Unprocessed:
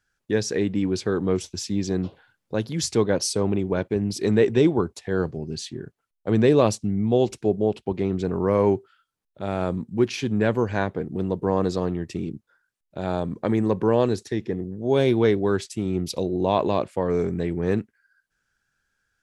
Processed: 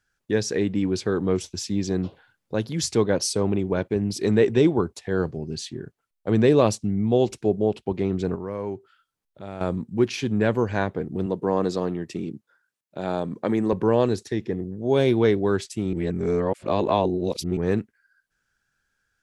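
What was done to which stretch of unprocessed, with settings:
8.35–9.61 compressor 1.5:1, threshold -45 dBFS
11.26–13.73 HPF 150 Hz
15.93–17.57 reverse

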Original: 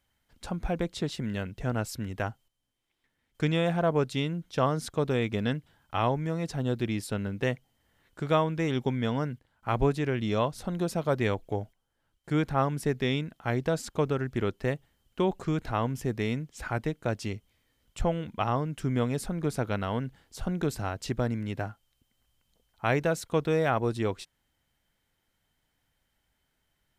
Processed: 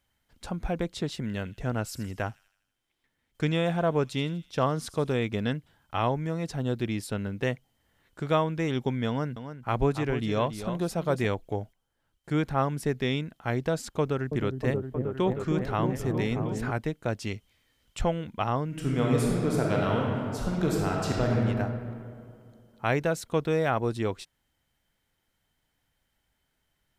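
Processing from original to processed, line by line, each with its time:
1.3–5.14 thin delay 81 ms, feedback 55%, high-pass 3300 Hz, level -14 dB
9.08–11.26 echo 0.282 s -10 dB
14–16.71 repeats that get brighter 0.314 s, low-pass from 400 Hz, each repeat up 1 oct, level -3 dB
17.27–18.11 bell 3200 Hz +5 dB 3 oct
18.65–21.4 reverb throw, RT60 2.4 s, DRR -2.5 dB

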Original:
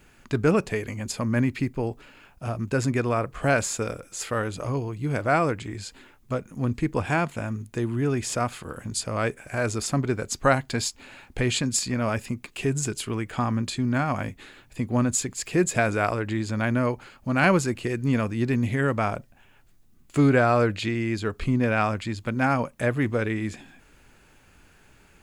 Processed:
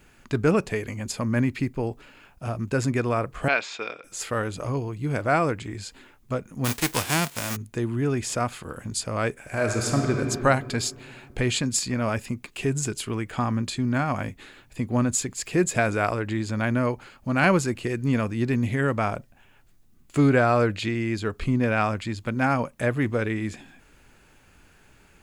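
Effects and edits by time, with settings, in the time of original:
3.48–4.04 speaker cabinet 460–4700 Hz, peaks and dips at 550 Hz -6 dB, 2400 Hz +7 dB, 3600 Hz +7 dB
6.64–7.55 spectral whitening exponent 0.3
9.34–10.18 reverb throw, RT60 2.5 s, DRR 1.5 dB

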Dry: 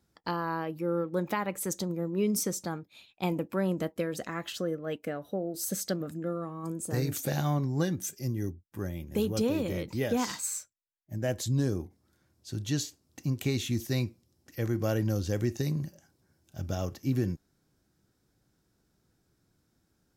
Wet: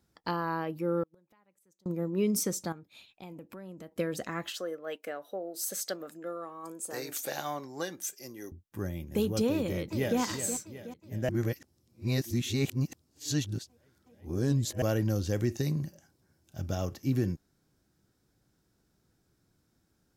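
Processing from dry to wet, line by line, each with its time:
1.03–1.86 flipped gate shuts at -27 dBFS, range -36 dB
2.72–3.92 compressor 3:1, threshold -47 dBFS
4.51–8.52 HPF 490 Hz
9.54–10.19 echo throw 0.37 s, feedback 50%, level -9 dB
11.29–14.82 reverse

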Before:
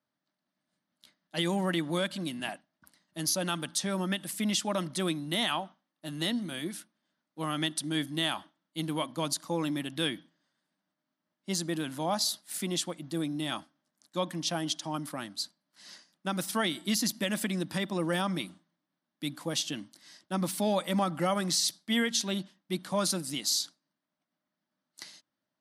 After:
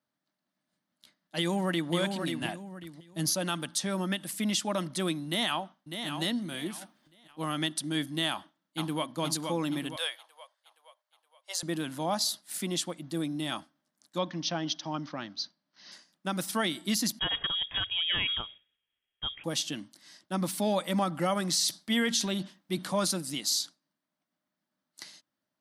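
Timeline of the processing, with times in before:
1.38–1.92 echo throw 0.54 s, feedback 25%, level -5.5 dB
2.42–3.31 low shelf 170 Hz +11 dB
5.26–6.07 echo throw 0.6 s, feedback 25%, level -7.5 dB
6.78–7.52 transient shaper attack 0 dB, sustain +12 dB
8.3–9.13 echo throw 0.47 s, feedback 50%, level -4.5 dB
9.96–11.63 Chebyshev high-pass 520 Hz, order 5
14.18–15.92 steep low-pass 6200 Hz 96 dB/oct
17.19–19.44 inverted band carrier 3500 Hz
21.53–23.05 transient shaper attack +1 dB, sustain +7 dB

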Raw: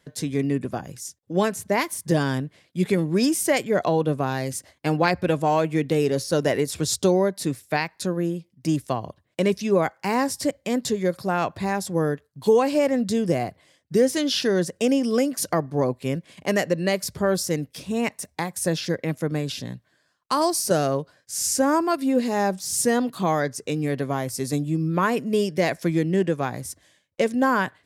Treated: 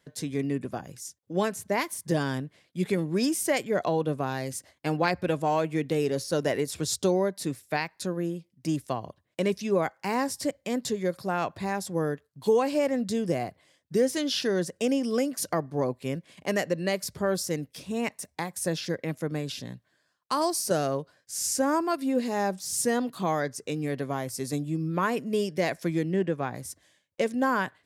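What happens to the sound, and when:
26.13–26.55 tone controls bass +1 dB, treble -9 dB
whole clip: low shelf 150 Hz -3 dB; gain -4.5 dB

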